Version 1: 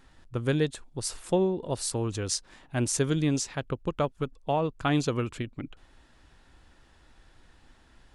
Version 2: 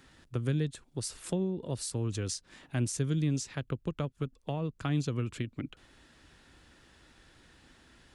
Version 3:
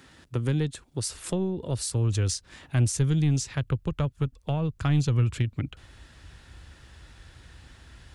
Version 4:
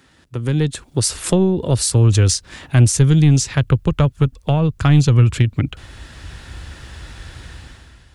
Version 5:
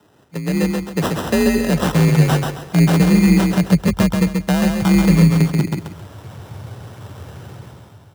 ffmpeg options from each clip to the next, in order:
ffmpeg -i in.wav -filter_complex "[0:a]highpass=frequency=120:poles=1,equalizer=frequency=840:width=1.2:gain=-6,acrossover=split=190[link_01][link_02];[link_02]acompressor=threshold=-40dB:ratio=4[link_03];[link_01][link_03]amix=inputs=2:normalize=0,volume=3.5dB" out.wav
ffmpeg -i in.wav -af "highpass=59,asoftclip=type=tanh:threshold=-20.5dB,asubboost=boost=7:cutoff=93,volume=6dB" out.wav
ffmpeg -i in.wav -af "dynaudnorm=framelen=130:gausssize=9:maxgain=14dB" out.wav
ffmpeg -i in.wav -filter_complex "[0:a]acrusher=samples=20:mix=1:aa=0.000001,asplit=2[link_01][link_02];[link_02]aecho=0:1:134|268|402|536:0.631|0.189|0.0568|0.017[link_03];[link_01][link_03]amix=inputs=2:normalize=0,afreqshift=45,volume=-1.5dB" out.wav

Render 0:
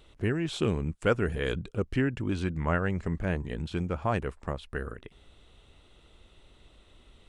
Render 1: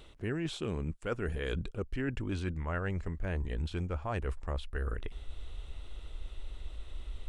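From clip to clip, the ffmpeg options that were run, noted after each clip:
ffmpeg -i in.wav -af "asubboost=boost=7.5:cutoff=57,areverse,acompressor=threshold=-35dB:ratio=10,areverse,volume=4dB" out.wav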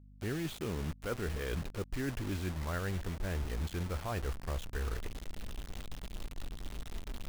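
ffmpeg -i in.wav -af "bass=frequency=250:gain=1,treble=frequency=4000:gain=-8,acrusher=bits=6:mix=0:aa=0.000001,aeval=exprs='val(0)+0.00251*(sin(2*PI*50*n/s)+sin(2*PI*2*50*n/s)/2+sin(2*PI*3*50*n/s)/3+sin(2*PI*4*50*n/s)/4+sin(2*PI*5*50*n/s)/5)':channel_layout=same,volume=-2.5dB" out.wav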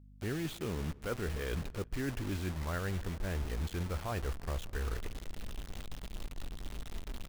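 ffmpeg -i in.wav -filter_complex "[0:a]asplit=2[link_01][link_02];[link_02]adelay=169,lowpass=frequency=2600:poles=1,volume=-21.5dB,asplit=2[link_03][link_04];[link_04]adelay=169,lowpass=frequency=2600:poles=1,volume=0.44,asplit=2[link_05][link_06];[link_06]adelay=169,lowpass=frequency=2600:poles=1,volume=0.44[link_07];[link_01][link_03][link_05][link_07]amix=inputs=4:normalize=0" out.wav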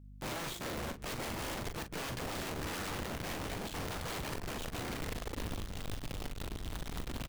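ffmpeg -i in.wav -filter_complex "[0:a]aeval=exprs='(mod(70.8*val(0)+1,2)-1)/70.8':channel_layout=same,asplit=2[link_01][link_02];[link_02]adelay=41,volume=-9dB[link_03];[link_01][link_03]amix=inputs=2:normalize=0,volume=2dB" out.wav

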